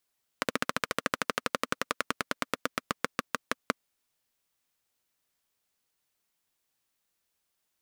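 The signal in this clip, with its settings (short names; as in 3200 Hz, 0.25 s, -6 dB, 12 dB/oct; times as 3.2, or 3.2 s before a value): single-cylinder engine model, changing speed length 3.32 s, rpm 1800, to 600, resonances 260/500/1200 Hz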